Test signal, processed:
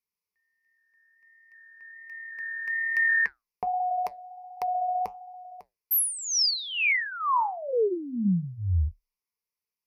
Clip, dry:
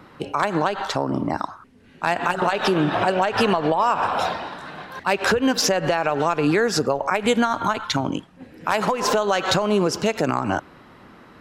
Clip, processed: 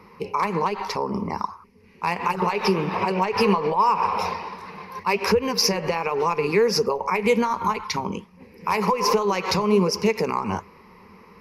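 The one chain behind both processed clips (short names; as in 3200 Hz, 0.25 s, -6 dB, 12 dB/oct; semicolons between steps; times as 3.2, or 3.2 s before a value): ripple EQ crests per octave 0.84, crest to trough 15 dB; flange 1.3 Hz, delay 2.3 ms, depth 7.9 ms, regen -73%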